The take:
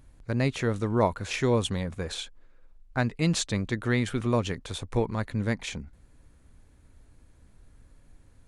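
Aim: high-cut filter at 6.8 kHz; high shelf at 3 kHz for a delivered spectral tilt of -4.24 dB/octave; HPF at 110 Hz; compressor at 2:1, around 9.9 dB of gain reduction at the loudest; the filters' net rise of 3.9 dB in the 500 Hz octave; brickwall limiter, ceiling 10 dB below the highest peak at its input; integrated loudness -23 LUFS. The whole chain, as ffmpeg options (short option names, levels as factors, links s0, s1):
-af "highpass=110,lowpass=6800,equalizer=f=500:t=o:g=4.5,highshelf=f=3000:g=7,acompressor=threshold=0.02:ratio=2,volume=5.31,alimiter=limit=0.266:level=0:latency=1"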